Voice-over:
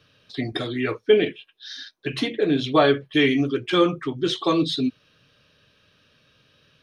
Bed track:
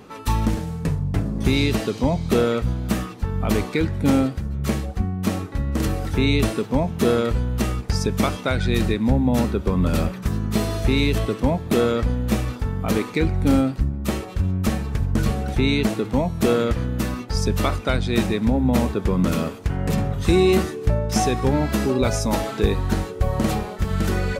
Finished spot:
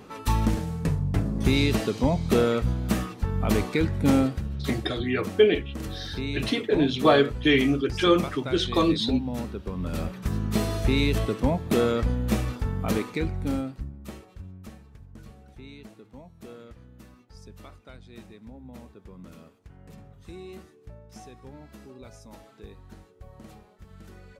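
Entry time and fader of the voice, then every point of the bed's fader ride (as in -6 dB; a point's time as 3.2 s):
4.30 s, -1.5 dB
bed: 4.35 s -2.5 dB
4.98 s -12 dB
9.78 s -12 dB
10.37 s -3.5 dB
12.84 s -3.5 dB
14.99 s -25.5 dB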